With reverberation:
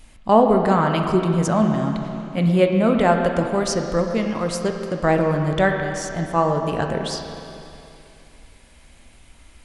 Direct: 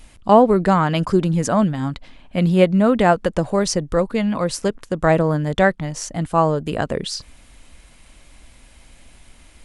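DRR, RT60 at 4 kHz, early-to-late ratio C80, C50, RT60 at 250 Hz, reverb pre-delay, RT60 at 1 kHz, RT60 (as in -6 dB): 3.0 dB, 2.7 s, 5.0 dB, 4.0 dB, 2.8 s, 13 ms, 2.8 s, 2.8 s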